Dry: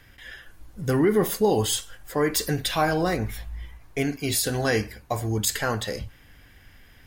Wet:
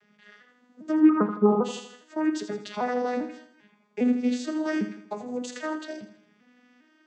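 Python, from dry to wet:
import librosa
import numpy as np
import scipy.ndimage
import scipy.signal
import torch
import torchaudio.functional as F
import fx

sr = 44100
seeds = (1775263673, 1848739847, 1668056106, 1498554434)

y = fx.vocoder_arp(x, sr, chord='minor triad', root=56, every_ms=400)
y = fx.lowpass_res(y, sr, hz=1300.0, q=14.0, at=(1.09, 1.63), fade=0.02)
y = fx.echo_feedback(y, sr, ms=81, feedback_pct=45, wet_db=-11.5)
y = y * 10.0 ** (-1.0 / 20.0)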